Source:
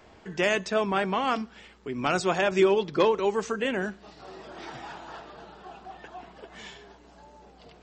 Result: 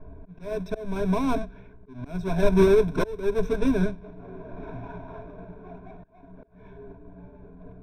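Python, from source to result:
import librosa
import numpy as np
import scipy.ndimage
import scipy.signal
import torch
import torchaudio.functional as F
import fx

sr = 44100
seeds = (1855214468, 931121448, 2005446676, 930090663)

y = fx.halfwave_hold(x, sr)
y = fx.ripple_eq(y, sr, per_octave=1.6, db=17)
y = fx.env_lowpass(y, sr, base_hz=1300.0, full_db=-16.0)
y = fx.auto_swell(y, sr, attack_ms=459.0)
y = fx.tilt_eq(y, sr, slope=-4.0)
y = y * 10.0 ** (-8.5 / 20.0)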